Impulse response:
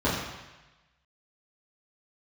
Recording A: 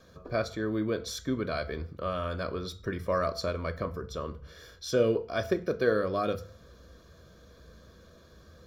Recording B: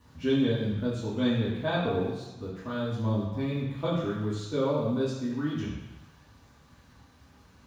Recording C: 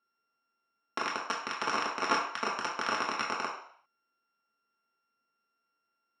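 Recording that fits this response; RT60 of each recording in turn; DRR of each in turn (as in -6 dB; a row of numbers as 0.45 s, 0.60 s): B; 0.40 s, 1.1 s, 0.60 s; 10.5 dB, -10.5 dB, -4.5 dB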